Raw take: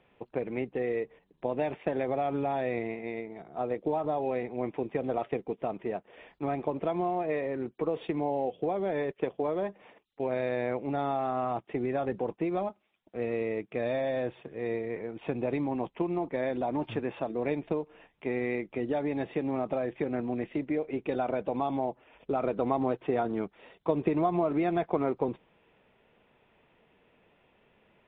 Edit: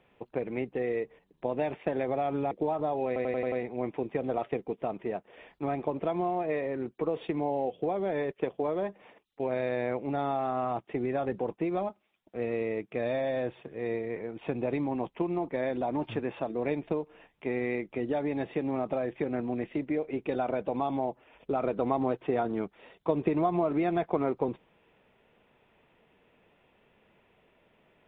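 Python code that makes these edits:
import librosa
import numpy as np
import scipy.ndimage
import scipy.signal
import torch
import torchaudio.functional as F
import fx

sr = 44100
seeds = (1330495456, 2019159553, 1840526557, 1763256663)

y = fx.edit(x, sr, fx.cut(start_s=2.51, length_s=1.25),
    fx.stutter(start_s=4.32, slice_s=0.09, count=6), tone=tone)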